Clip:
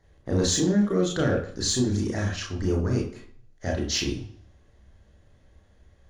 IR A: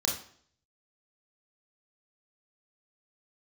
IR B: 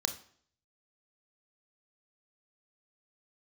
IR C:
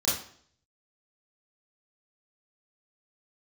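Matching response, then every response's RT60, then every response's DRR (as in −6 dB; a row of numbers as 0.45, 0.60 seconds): A; 0.55, 0.55, 0.55 seconds; −1.0, 7.0, −9.0 decibels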